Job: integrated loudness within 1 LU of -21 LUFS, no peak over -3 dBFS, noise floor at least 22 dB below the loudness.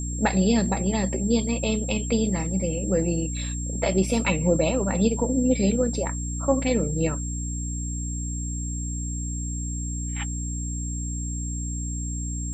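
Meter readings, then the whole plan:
hum 60 Hz; highest harmonic 300 Hz; hum level -28 dBFS; steady tone 7.5 kHz; tone level -34 dBFS; loudness -26.0 LUFS; peak level -8.5 dBFS; loudness target -21.0 LUFS
-> hum notches 60/120/180/240/300 Hz; band-stop 7.5 kHz, Q 30; trim +5 dB

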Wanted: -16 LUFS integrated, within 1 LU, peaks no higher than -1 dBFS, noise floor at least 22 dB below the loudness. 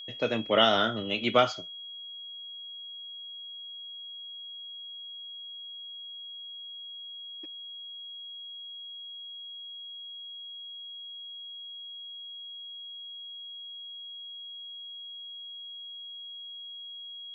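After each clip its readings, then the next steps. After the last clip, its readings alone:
steady tone 3.3 kHz; tone level -40 dBFS; loudness -34.5 LUFS; peak level -9.5 dBFS; loudness target -16.0 LUFS
-> band-stop 3.3 kHz, Q 30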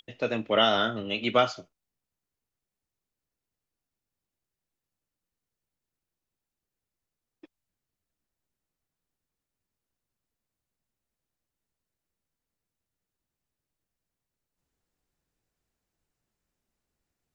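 steady tone not found; loudness -26.0 LUFS; peak level -9.5 dBFS; loudness target -16.0 LUFS
-> trim +10 dB; peak limiter -1 dBFS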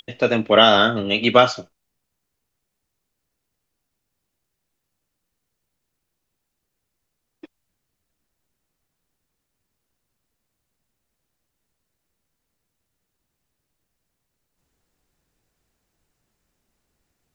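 loudness -16.0 LUFS; peak level -1.0 dBFS; noise floor -79 dBFS

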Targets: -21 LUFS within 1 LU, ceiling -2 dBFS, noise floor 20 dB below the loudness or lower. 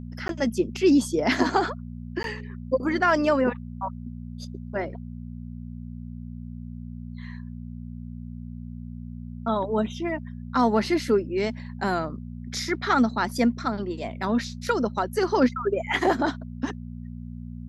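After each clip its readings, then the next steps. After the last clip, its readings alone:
dropouts 2; longest dropout 12 ms; hum 60 Hz; highest harmonic 240 Hz; hum level -35 dBFS; loudness -25.5 LUFS; peak level -8.5 dBFS; loudness target -21.0 LUFS
-> interpolate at 0.28/2.23 s, 12 ms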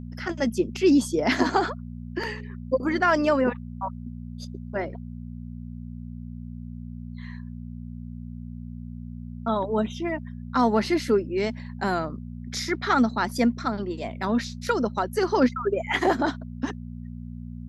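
dropouts 0; hum 60 Hz; highest harmonic 240 Hz; hum level -35 dBFS
-> de-hum 60 Hz, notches 4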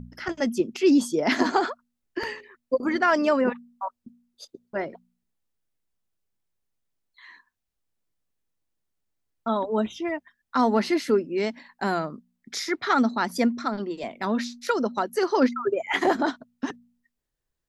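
hum not found; loudness -25.5 LUFS; peak level -8.5 dBFS; loudness target -21.0 LUFS
-> trim +4.5 dB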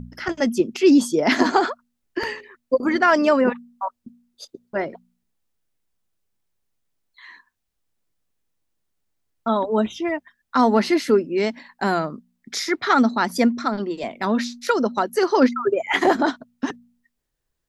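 loudness -21.0 LUFS; peak level -4.0 dBFS; noise floor -77 dBFS

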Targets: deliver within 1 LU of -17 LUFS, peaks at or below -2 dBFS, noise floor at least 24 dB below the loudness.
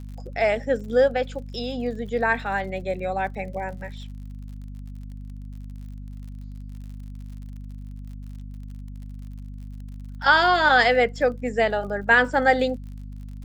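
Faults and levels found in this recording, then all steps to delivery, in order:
tick rate 52 per s; hum 50 Hz; highest harmonic 250 Hz; hum level -34 dBFS; loudness -22.0 LUFS; peak level -4.0 dBFS; loudness target -17.0 LUFS
-> de-click; hum notches 50/100/150/200/250 Hz; trim +5 dB; peak limiter -2 dBFS

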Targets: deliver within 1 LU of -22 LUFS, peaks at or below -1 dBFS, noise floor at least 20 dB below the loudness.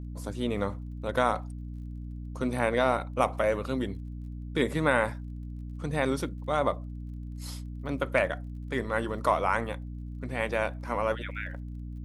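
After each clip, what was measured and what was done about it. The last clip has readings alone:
tick rate 31 per s; hum 60 Hz; highest harmonic 300 Hz; hum level -36 dBFS; loudness -30.0 LUFS; peak level -9.5 dBFS; loudness target -22.0 LUFS
-> de-click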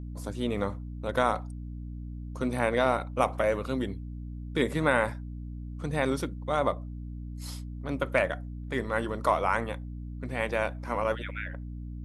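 tick rate 0.083 per s; hum 60 Hz; highest harmonic 300 Hz; hum level -36 dBFS
-> hum notches 60/120/180/240/300 Hz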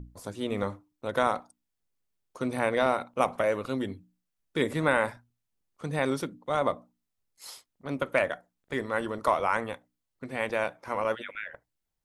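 hum not found; loudness -30.0 LUFS; peak level -9.5 dBFS; loudness target -22.0 LUFS
-> trim +8 dB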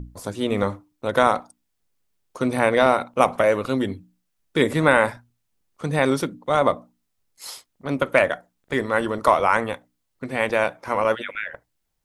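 loudness -22.0 LUFS; peak level -1.5 dBFS; noise floor -75 dBFS

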